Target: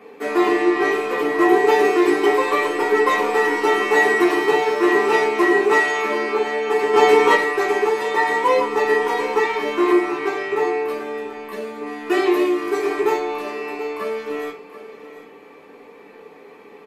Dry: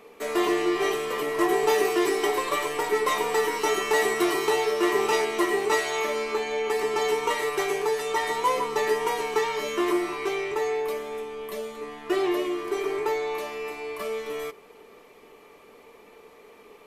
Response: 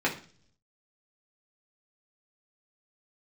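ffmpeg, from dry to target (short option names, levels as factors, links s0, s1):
-filter_complex "[0:a]asettb=1/sr,asplit=3[s0][s1][s2];[s0]atrim=end=4.344[s3];[s1]atrim=start=4.34:end=4.86,asetpts=PTS-STARTPTS,afade=t=in:d=0.004:c=qsin,afade=t=out:st=0.516:d=0.004:c=qsin,aeval=exprs='sgn(val(0))*max(abs(val(0))-0.00631,0)':c=same[s4];[s2]atrim=start=4.856[s5];[s3][s4]acrossfade=d=0.004:c1=hsin:c2=qsin[s6];[s6][s5]acrossfade=d=0.004:c1=qsin:c2=hsin,asettb=1/sr,asplit=3[s7][s8][s9];[s7]atrim=end=6.934[s10];[s8]atrim=start=6.93:end=7.35,asetpts=PTS-STARTPTS,afade=t=in:d=0.004:c=qsin,afade=t=out:st=0.416:d=0.004:c=qsin,acontrast=58[s11];[s9]atrim=start=7.346[s12];[s10][s11]acrossfade=d=0.004:c1=hsin:c2=qsin[s13];[s13][s12]acrossfade=d=0.004:c1=qsin:c2=hsin,asettb=1/sr,asplit=3[s14][s15][s16];[s14]atrim=end=11.864[s17];[s15]atrim=start=11.86:end=13.18,asetpts=PTS-STARTPTS,afade=t=in:d=0.004:c=qsin,afade=t=out:st=1.316:d=0.004:c=qsin,highshelf=f=4400:g=10[s18];[s16]atrim=start=13.176[s19];[s17][s18]acrossfade=d=0.004:c1=hsin:c2=qsin[s20];[s20][s19]acrossfade=d=0.004:c1=qsin:c2=hsin,aecho=1:1:732:0.2[s21];[1:a]atrim=start_sample=2205,atrim=end_sample=4410[s22];[s21][s22]afir=irnorm=-1:irlink=0,volume=0.596"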